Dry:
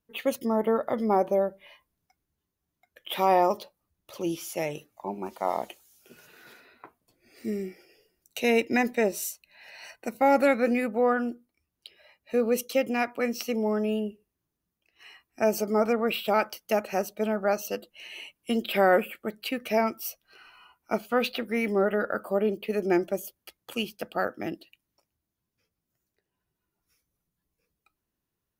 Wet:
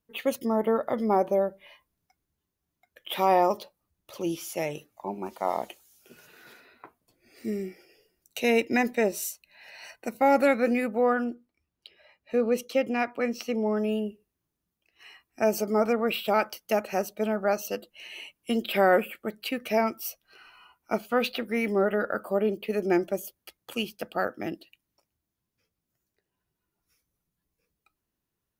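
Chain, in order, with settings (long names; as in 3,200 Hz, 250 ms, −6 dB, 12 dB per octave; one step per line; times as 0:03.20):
0:11.24–0:13.77: high-shelf EQ 6,800 Hz −11.5 dB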